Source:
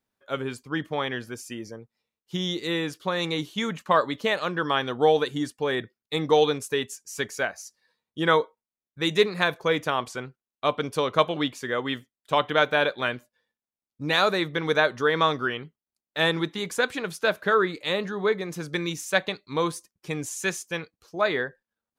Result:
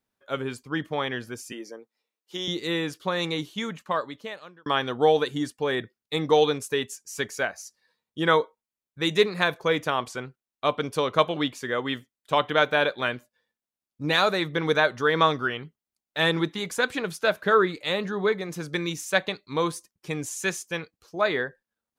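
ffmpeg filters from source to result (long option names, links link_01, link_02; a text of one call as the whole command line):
ffmpeg -i in.wav -filter_complex "[0:a]asettb=1/sr,asplit=3[link_01][link_02][link_03];[link_01]atrim=end=1.524[link_04];[link_02]atrim=start=1.52:end=2.48,asetpts=PTS-STARTPTS,afade=type=in:duration=0.004:curve=qsin,afade=type=out:start_time=0.956:duration=0.004:curve=qsin,highpass=frequency=270:width=0.5412,highpass=frequency=270:width=1.3066[link_05];[link_03]atrim=start=2.476[link_06];[link_04][link_05]acrossfade=duration=0.004:curve1=hsin:curve2=qsin[link_07];[link_07][link_06]acrossfade=duration=0.004:curve1=qsin:curve2=hsin,asettb=1/sr,asplit=3[link_08][link_09][link_10];[link_08]atrim=end=14.044[link_11];[link_09]atrim=start=14.04:end=18.49,asetpts=PTS-STARTPTS,afade=type=in:duration=0.004:curve=qsin,afade=type=out:start_time=4.446:duration=0.004:curve=qsin,aphaser=in_gain=1:out_gain=1:delay=1.5:decay=0.21:speed=1.7:type=sinusoidal[link_12];[link_10]atrim=start=18.486[link_13];[link_11][link_12]acrossfade=duration=0.004:curve1=hsin:curve2=qsin[link_14];[link_14][link_13]acrossfade=duration=0.004:curve1=qsin:curve2=hsin,asplit=2[link_15][link_16];[link_15]atrim=end=4.66,asetpts=PTS-STARTPTS,afade=type=out:start_time=3.21:duration=1.45[link_17];[link_16]atrim=start=4.66,asetpts=PTS-STARTPTS,afade=type=in:duration=0.004:curve=hsin[link_18];[link_17][link_18]concat=n=2:v=0:a=1" out.wav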